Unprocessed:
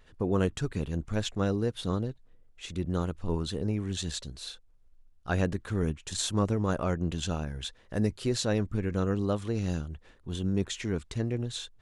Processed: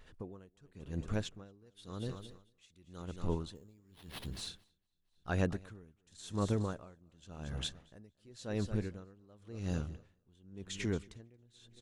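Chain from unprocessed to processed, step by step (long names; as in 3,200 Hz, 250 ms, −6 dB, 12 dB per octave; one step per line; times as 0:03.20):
0:01.66–0:03.02: high-shelf EQ 2,000 Hz +11 dB
in parallel at −0.5 dB: downward compressor, threshold −36 dBFS, peak gain reduction 14.5 dB
0:03.55–0:04.28: on the sum: sample-rate reduction 7,100 Hz, jitter 0%
on a send: repeating echo 228 ms, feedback 57%, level −16 dB
on the sum: tremolo with a sine in dB 0.92 Hz, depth 30 dB
level −5.5 dB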